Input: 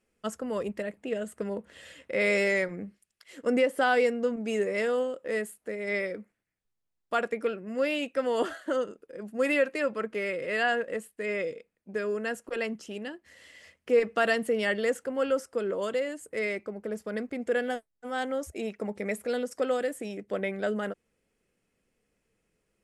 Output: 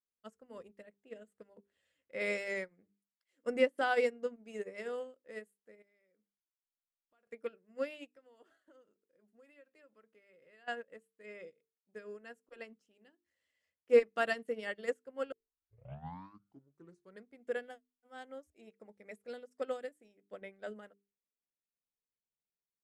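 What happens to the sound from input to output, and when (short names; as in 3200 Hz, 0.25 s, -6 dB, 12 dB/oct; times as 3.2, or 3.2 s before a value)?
5.82–7.27 compressor 3:1, threshold -46 dBFS
8.07–10.68 compressor, threshold -33 dBFS
15.32 tape start 1.94 s
whole clip: notches 50/100/150/200/250/300/350/400/450 Hz; upward expander 2.5:1, over -39 dBFS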